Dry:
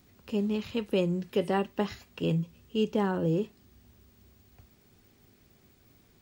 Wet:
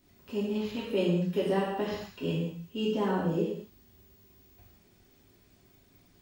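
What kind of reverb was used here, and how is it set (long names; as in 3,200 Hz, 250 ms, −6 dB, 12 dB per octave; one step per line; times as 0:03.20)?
reverb whose tail is shaped and stops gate 270 ms falling, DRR −7.5 dB
level −8.5 dB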